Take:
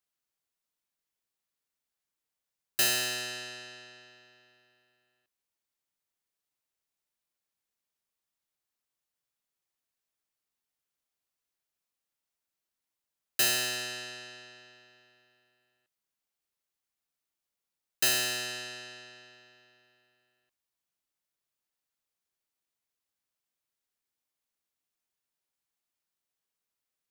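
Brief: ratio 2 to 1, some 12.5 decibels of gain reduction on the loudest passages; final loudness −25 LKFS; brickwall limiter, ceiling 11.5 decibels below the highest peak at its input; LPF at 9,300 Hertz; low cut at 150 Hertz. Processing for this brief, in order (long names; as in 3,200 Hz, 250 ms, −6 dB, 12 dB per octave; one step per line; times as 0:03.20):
high-pass filter 150 Hz
low-pass filter 9,300 Hz
downward compressor 2 to 1, threshold −48 dBFS
level +21.5 dB
brickwall limiter −15 dBFS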